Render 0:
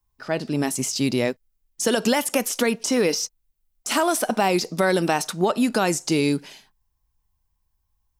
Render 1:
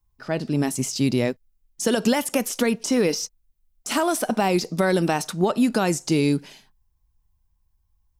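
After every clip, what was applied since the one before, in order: low shelf 250 Hz +8 dB; gain -2.5 dB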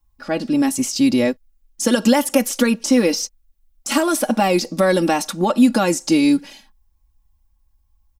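comb 3.6 ms, depth 78%; gain +2.5 dB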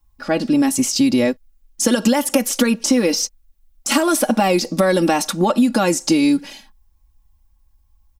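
compressor 5:1, threshold -16 dBFS, peak gain reduction 7.5 dB; gain +4 dB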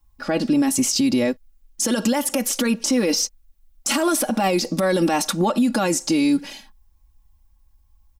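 limiter -11.5 dBFS, peak gain reduction 9 dB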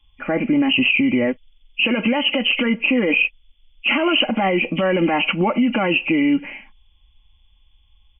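nonlinear frequency compression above 1900 Hz 4:1; gain +1 dB

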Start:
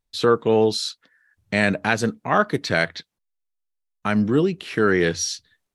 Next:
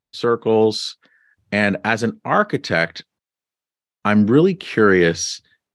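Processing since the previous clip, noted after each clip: HPF 92 Hz; high shelf 7300 Hz -10.5 dB; AGC gain up to 13.5 dB; gain -1 dB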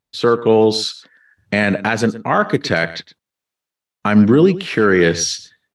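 limiter -7.5 dBFS, peak gain reduction 5.5 dB; echo 0.115 s -16.5 dB; gain +4.5 dB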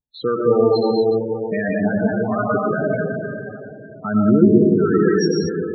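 vibrato 0.35 Hz 25 cents; digital reverb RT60 3.2 s, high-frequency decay 0.45×, pre-delay 70 ms, DRR -4 dB; loudest bins only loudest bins 16; gain -6.5 dB

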